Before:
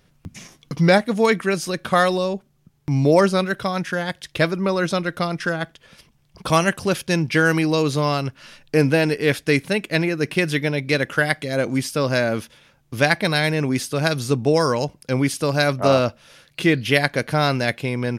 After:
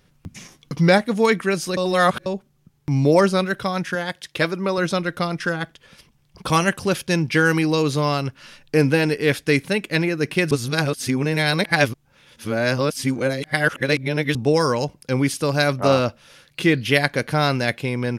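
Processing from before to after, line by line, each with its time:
1.77–2.26 reverse
3.95–4.78 HPF 200 Hz 6 dB/oct
10.51–14.35 reverse
whole clip: notch 650 Hz, Q 12

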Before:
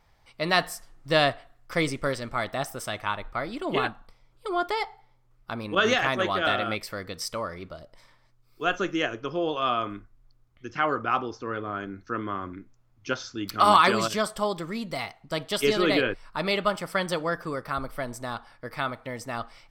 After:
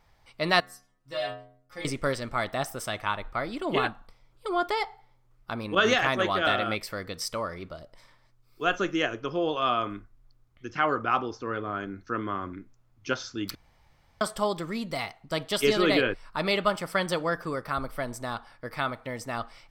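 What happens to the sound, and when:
0.6–1.85 metallic resonator 63 Hz, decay 0.84 s, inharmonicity 0.008
13.55–14.21 room tone

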